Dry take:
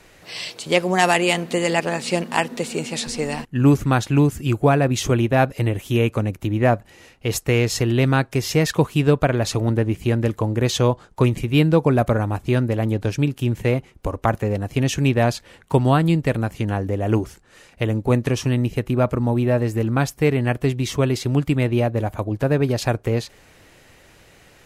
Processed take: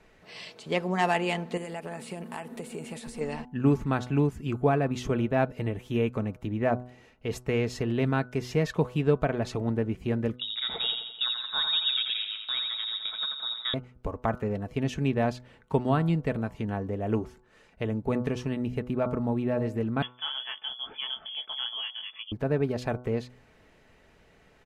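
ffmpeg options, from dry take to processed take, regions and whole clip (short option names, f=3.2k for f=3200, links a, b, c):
-filter_complex "[0:a]asettb=1/sr,asplit=3[a][b][c];[a]atrim=end=1.574[d];[b]atrim=start=1.57:end=3.21,asetpts=PTS-STARTPTS,afade=t=in:d=0.004:c=qsin,afade=t=out:st=1.636:d=0.004:c=qsin,highshelf=f=7.4k:t=q:w=1.5:g=10.5,acompressor=threshold=-24dB:ratio=5:attack=3.2:release=140:knee=1:detection=peak[e];[c]atrim=start=3.206[f];[d][e]acrossfade=d=0.004:c1=hsin:c2=qsin[g];[g][f]acrossfade=d=0.004:c1=qsin:c2=hsin,asettb=1/sr,asplit=3[h][i][j];[h]atrim=end=10.364[k];[i]atrim=start=10.36:end=13.74,asetpts=PTS-STARTPTS,afade=t=in:d=0.004:c=qsin,afade=t=out:st=3.376:d=0.004:c=qsin,lowpass=f=3.3k:t=q:w=0.5098,lowpass=f=3.3k:t=q:w=0.6013,lowpass=f=3.3k:t=q:w=0.9,lowpass=f=3.3k:t=q:w=2.563,afreqshift=-3900,agate=range=-16dB:threshold=-35dB:ratio=16:release=100:detection=peak,aecho=1:1:85|170|255|340|425|510|595:0.501|0.271|0.146|0.0789|0.0426|0.023|0.0124,atrim=end_sample=149058[l];[j]atrim=start=13.736[m];[k][l]acrossfade=d=0.004:c1=hsin:c2=qsin[n];[n][m]acrossfade=d=0.004:c1=qsin:c2=hsin,asettb=1/sr,asplit=3[o][p][q];[o]atrim=end=20.024[r];[p]atrim=start=20.02:end=22.32,asetpts=PTS-STARTPTS,afade=t=in:d=0.004:c=qsin,afade=t=out:st=2.296:d=0.004:c=qsin,flanger=delay=15.5:depth=7.7:speed=1.3,acompressor=mode=upward:threshold=-29dB:ratio=2.5:attack=3.2:release=140:knee=2.83:detection=peak,lowpass=f=3k:t=q:w=0.5098,lowpass=f=3k:t=q:w=0.6013,lowpass=f=3k:t=q:w=0.9,lowpass=f=3k:t=q:w=2.563,afreqshift=-3500[s];[q]atrim=start=22.316[t];[r][s]acrossfade=d=0.004:c1=hsin:c2=qsin[u];[u][t]acrossfade=d=0.004:c1=qsin:c2=hsin,lowpass=f=2k:p=1,aecho=1:1:4.6:0.33,bandreject=f=124.1:t=h:w=4,bandreject=f=248.2:t=h:w=4,bandreject=f=372.3:t=h:w=4,bandreject=f=496.4:t=h:w=4,bandreject=f=620.5:t=h:w=4,bandreject=f=744.6:t=h:w=4,bandreject=f=868.7:t=h:w=4,bandreject=f=992.8:t=h:w=4,bandreject=f=1.1169k:t=h:w=4,bandreject=f=1.241k:t=h:w=4,bandreject=f=1.3651k:t=h:w=4,bandreject=f=1.4892k:t=h:w=4,volume=-7.5dB"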